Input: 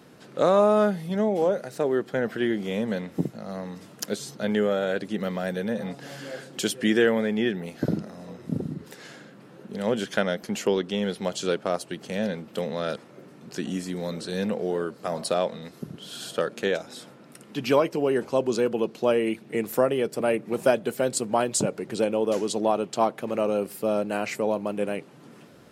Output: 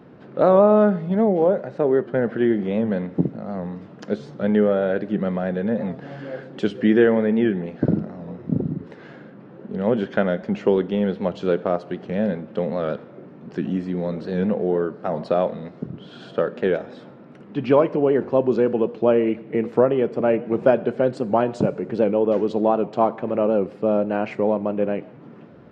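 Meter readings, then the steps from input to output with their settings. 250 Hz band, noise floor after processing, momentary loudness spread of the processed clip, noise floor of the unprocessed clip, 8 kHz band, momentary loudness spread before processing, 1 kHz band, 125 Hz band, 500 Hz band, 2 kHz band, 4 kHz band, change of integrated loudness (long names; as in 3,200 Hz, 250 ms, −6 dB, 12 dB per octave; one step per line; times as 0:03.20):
+6.0 dB, −44 dBFS, 12 LU, −50 dBFS, below −20 dB, 13 LU, +3.0 dB, +6.5 dB, +5.0 dB, −0.5 dB, −7.5 dB, +5.0 dB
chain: head-to-tape spacing loss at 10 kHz 43 dB
dense smooth reverb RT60 0.91 s, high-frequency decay 0.9×, DRR 15 dB
wow of a warped record 78 rpm, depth 100 cents
level +7 dB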